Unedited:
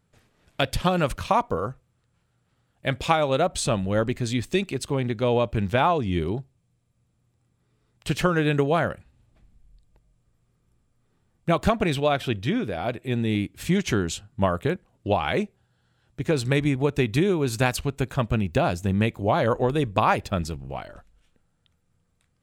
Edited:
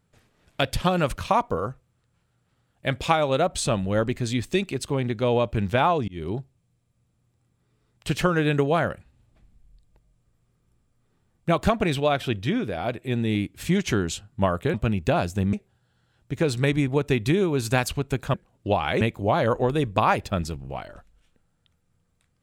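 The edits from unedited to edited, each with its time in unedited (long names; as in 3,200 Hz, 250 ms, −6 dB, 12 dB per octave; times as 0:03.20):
0:06.08–0:06.36: fade in
0:14.74–0:15.41: swap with 0:18.22–0:19.01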